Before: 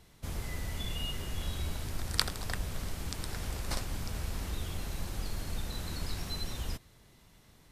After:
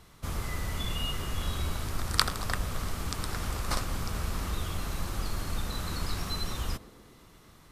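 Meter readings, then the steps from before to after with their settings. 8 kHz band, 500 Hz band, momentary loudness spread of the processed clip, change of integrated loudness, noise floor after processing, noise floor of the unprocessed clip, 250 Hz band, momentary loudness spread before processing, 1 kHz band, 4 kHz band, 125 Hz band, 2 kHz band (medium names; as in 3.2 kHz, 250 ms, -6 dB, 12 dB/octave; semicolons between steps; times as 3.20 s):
+3.5 dB, +4.5 dB, 6 LU, +4.0 dB, -56 dBFS, -60 dBFS, +4.0 dB, 6 LU, +8.5 dB, +3.5 dB, +3.5 dB, +5.0 dB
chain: peaking EQ 1.2 kHz +8.5 dB 0.48 oct; band-passed feedback delay 119 ms, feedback 81%, band-pass 370 Hz, level -11.5 dB; trim +3.5 dB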